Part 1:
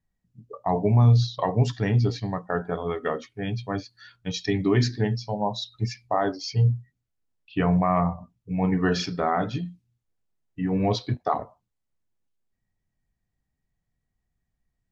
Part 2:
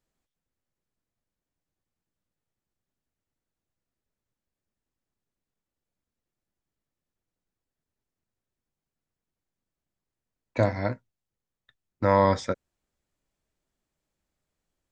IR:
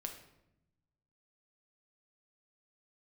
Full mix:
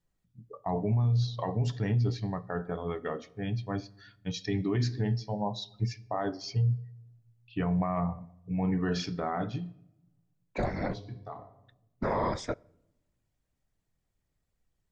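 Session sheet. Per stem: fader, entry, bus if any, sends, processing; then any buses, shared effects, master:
-8.5 dB, 0.00 s, send -10 dB, low shelf 230 Hz +5.5 dB; auto duck -22 dB, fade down 1.15 s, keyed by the second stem
-4.0 dB, 0.00 s, send -19 dB, whisperiser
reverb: on, RT60 0.85 s, pre-delay 6 ms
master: limiter -20.5 dBFS, peak gain reduction 9 dB

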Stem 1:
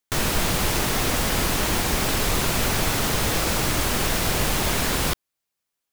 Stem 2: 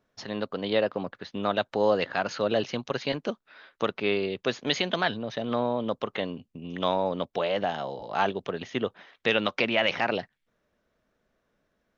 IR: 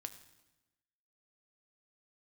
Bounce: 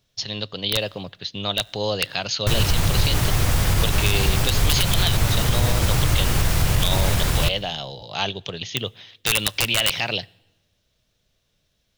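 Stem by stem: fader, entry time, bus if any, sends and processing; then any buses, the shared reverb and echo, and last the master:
-4.5 dB, 2.35 s, send -3 dB, dry
-2.5 dB, 0.00 s, send -10 dB, resonant high shelf 2300 Hz +13.5 dB, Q 1.5; wrapped overs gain 5.5 dB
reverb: on, RT60 1.1 s, pre-delay 5 ms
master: resonant low shelf 170 Hz +9.5 dB, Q 1.5; limiter -8.5 dBFS, peak gain reduction 6 dB

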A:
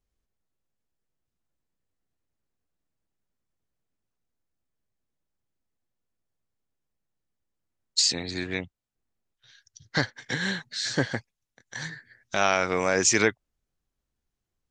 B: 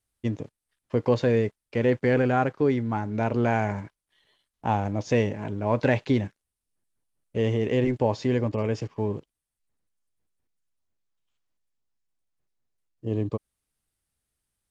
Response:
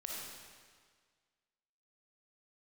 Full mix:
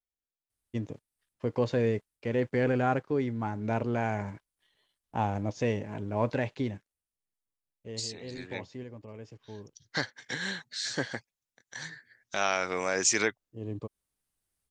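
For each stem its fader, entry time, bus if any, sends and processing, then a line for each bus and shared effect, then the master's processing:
8.23 s -15.5 dB -> 8.76 s -5 dB, 0.00 s, no send, low shelf 170 Hz -8.5 dB
-3.5 dB, 0.50 s, no send, tremolo saw up 1.2 Hz, depth 35%; auto duck -13 dB, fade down 1.75 s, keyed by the first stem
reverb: off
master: high shelf 8500 Hz +5 dB

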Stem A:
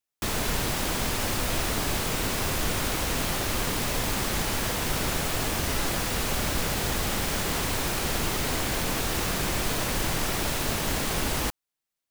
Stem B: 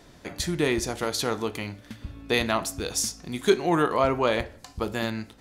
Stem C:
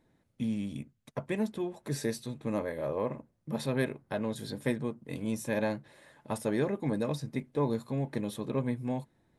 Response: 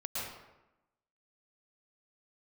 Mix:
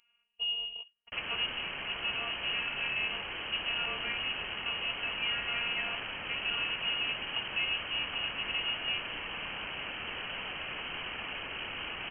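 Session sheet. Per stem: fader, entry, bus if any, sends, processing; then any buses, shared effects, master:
-8.0 dB, 0.90 s, no bus, no send, dry
-9.5 dB, 1.55 s, bus A, no send, dry
+0.5 dB, 0.00 s, bus A, no send, dry
bus A: 0.0 dB, robotiser 241 Hz; limiter -21.5 dBFS, peak gain reduction 6.5 dB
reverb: off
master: HPF 160 Hz 6 dB/oct; notch 1100 Hz, Q 13; inverted band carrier 3100 Hz

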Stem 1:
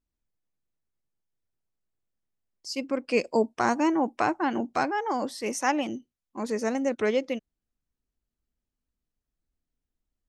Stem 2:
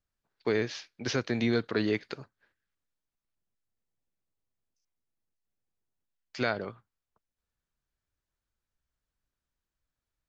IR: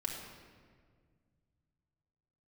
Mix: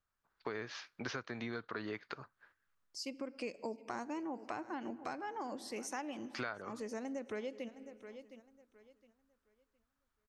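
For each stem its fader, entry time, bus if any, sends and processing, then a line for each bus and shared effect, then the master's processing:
-7.5 dB, 0.30 s, send -16.5 dB, echo send -19 dB, dry
-4.0 dB, 0.00 s, no send, no echo send, bell 1200 Hz +12 dB 1.3 oct; vocal rider 0.5 s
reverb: on, RT60 1.8 s, pre-delay 3 ms
echo: feedback echo 0.713 s, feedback 24%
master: compressor 4:1, threshold -40 dBFS, peak gain reduction 17.5 dB

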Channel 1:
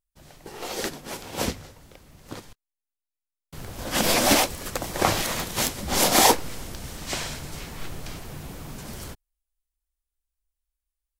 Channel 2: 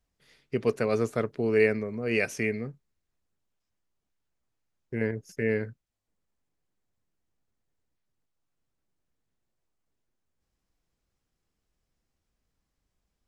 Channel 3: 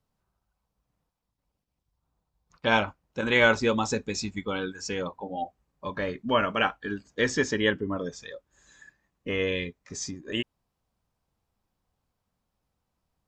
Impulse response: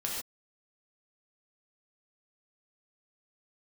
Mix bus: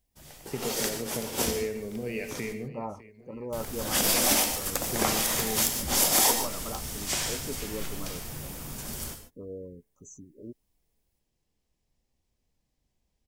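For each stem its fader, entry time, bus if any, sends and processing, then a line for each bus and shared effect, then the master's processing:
-6.5 dB, 0.00 s, send -6 dB, no echo send, high shelf 5200 Hz +11 dB; notch 4100 Hz, Q 19
-2.0 dB, 0.00 s, send -5.5 dB, echo send -14 dB, compressor, threshold -33 dBFS, peak gain reduction 15 dB; bell 1300 Hz -14.5 dB 0.51 oct
-10.5 dB, 0.10 s, no send, no echo send, treble ducked by the level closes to 1300 Hz, closed at -20 dBFS; Chebyshev band-stop 1300–6100 Hz, order 5; spectral gate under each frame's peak -25 dB strong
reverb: on, pre-delay 3 ms
echo: feedback echo 0.604 s, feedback 57%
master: compressor 2:1, threshold -24 dBFS, peak gain reduction 7.5 dB

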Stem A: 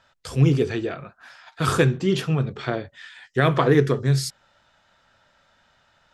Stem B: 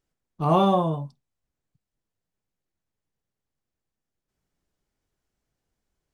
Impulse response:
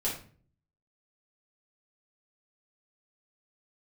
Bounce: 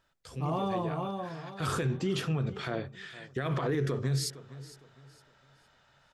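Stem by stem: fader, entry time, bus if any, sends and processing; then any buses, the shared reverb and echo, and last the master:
0.7 s -13.5 dB -> 1.42 s -3.5 dB, 0.00 s, no send, echo send -19.5 dB, limiter -15.5 dBFS, peak gain reduction 11.5 dB
+2.5 dB, 0.00 s, no send, echo send -19 dB, auto duck -12 dB, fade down 0.45 s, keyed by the first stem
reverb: off
echo: feedback echo 0.46 s, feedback 32%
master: limiter -22 dBFS, peak gain reduction 4.5 dB

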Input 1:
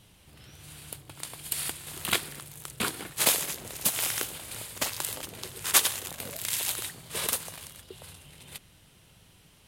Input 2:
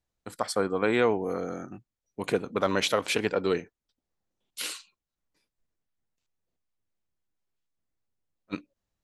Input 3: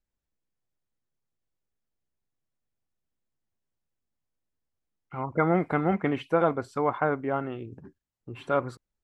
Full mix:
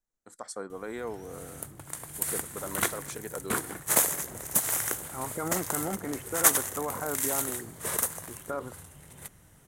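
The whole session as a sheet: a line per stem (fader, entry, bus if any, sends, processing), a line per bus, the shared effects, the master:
+1.5 dB, 0.70 s, no bus, no send, dry
-11.0 dB, 0.00 s, bus A, no send, band shelf 5700 Hz +8.5 dB
-3.0 dB, 0.00 s, bus A, no send, dry
bus A: 0.0 dB, bell 80 Hz -12.5 dB 1.3 oct; limiter -24 dBFS, peak gain reduction 9.5 dB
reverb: off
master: band shelf 3500 Hz -11.5 dB 1.3 oct

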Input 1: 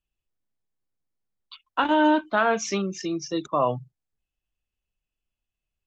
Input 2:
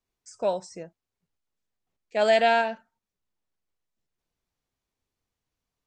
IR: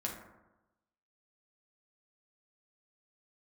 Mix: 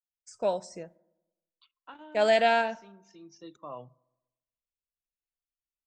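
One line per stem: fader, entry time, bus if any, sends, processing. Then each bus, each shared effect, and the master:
-19.5 dB, 0.10 s, send -22.5 dB, auto duck -14 dB, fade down 0.40 s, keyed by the second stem
-2.5 dB, 0.00 s, send -21.5 dB, expander -48 dBFS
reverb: on, RT60 1.0 s, pre-delay 5 ms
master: dry

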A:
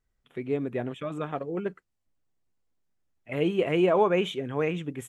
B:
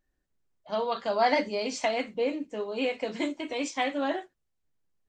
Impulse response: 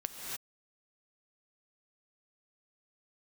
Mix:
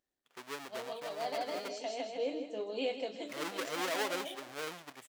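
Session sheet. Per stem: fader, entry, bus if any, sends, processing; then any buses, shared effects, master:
-11.0 dB, 0.00 s, no send, no echo send, half-waves squared off; low shelf 400 Hz -9 dB
-1.0 dB, 0.00 s, no send, echo send -10 dB, band shelf 1500 Hz -9.5 dB; auto duck -10 dB, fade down 0.25 s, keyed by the first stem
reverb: off
echo: feedback echo 0.16 s, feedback 44%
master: HPF 590 Hz 6 dB/oct; high shelf 6700 Hz -6.5 dB

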